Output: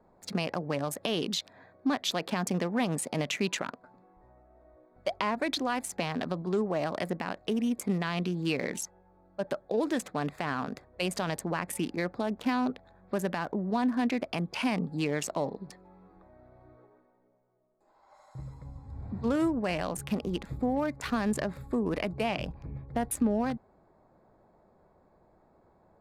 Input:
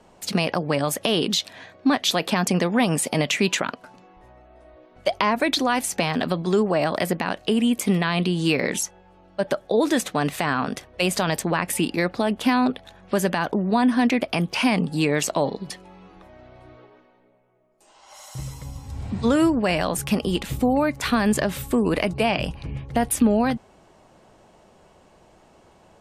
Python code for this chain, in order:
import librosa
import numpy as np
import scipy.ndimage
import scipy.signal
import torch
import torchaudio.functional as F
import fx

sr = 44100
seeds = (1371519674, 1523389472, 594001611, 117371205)

y = fx.wiener(x, sr, points=15)
y = y * librosa.db_to_amplitude(-8.5)